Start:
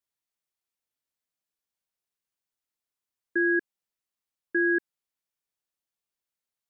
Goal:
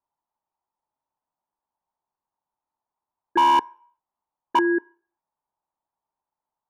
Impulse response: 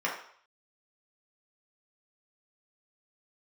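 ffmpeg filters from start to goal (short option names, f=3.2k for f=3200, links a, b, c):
-filter_complex "[0:a]equalizer=f=480:t=o:w=0.27:g=-4.5,asettb=1/sr,asplit=3[a][b][c];[a]atrim=end=3.374[d];[b]atrim=start=3.37:end=4.59,asetpts=PTS-STARTPTS,afade=t=in:d=0.004:c=qsin,afade=t=out:st=1.216:d=0.004:c=qsin,aeval=exprs='(mod(8.41*val(0)+1,2)-1)/8.41':c=same[e];[c]atrim=start=4.586[f];[d][e]acrossfade=d=0.004:c1=hsin:c2=qsin[g];[g][f]acrossfade=d=0.004:c1=qsin:c2=hsin,lowpass=f=910:t=q:w=7,asoftclip=type=hard:threshold=-17.5dB,asplit=2[h][i];[1:a]atrim=start_sample=2205[j];[i][j]afir=irnorm=-1:irlink=0,volume=-30.5dB[k];[h][k]amix=inputs=2:normalize=0,volume=4dB"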